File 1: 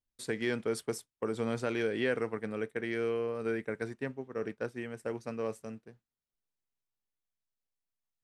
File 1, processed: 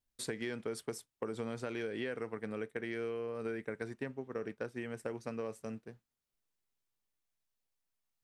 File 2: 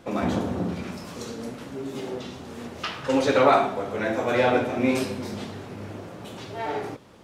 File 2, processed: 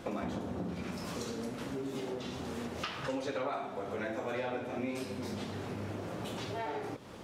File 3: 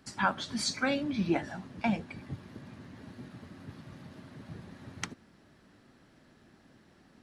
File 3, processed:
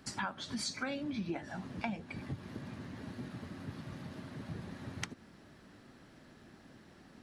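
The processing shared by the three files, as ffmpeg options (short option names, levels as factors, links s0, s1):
-af "acompressor=threshold=0.0112:ratio=5,volume=1.41"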